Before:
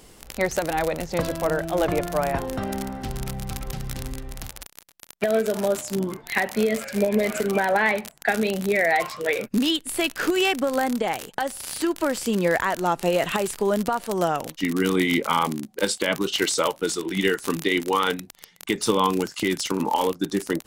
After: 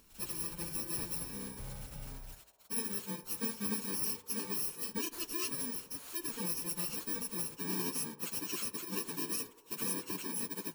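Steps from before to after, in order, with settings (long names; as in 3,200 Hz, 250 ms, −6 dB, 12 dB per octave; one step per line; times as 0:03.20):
samples in bit-reversed order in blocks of 64 samples
flanger 0.2 Hz, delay 3.6 ms, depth 7.2 ms, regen −80%
time stretch by phase vocoder 0.52×
mains-hum notches 50/100/150 Hz
feedback echo with a band-pass in the loop 84 ms, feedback 85%, band-pass 660 Hz, level −14 dB
level −6.5 dB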